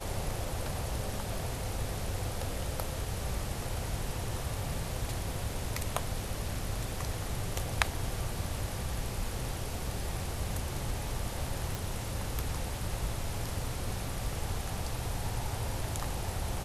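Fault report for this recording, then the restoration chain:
11.75 s: pop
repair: de-click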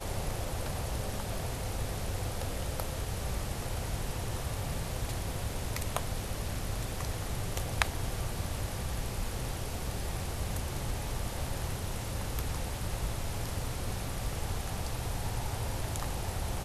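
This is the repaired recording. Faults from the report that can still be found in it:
11.75 s: pop

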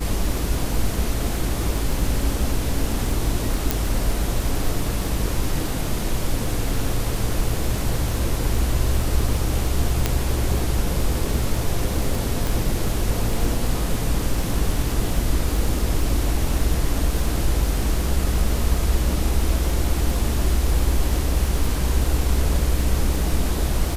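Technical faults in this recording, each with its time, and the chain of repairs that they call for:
crackle 28 per s -25 dBFS
3.71 s: pop
10.06 s: pop -4 dBFS
12.47 s: pop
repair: de-click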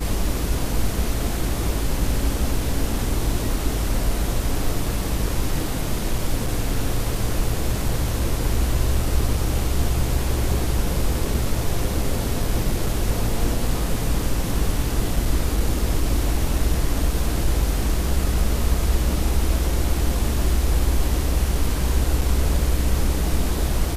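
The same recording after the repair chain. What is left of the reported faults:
3.71 s: pop

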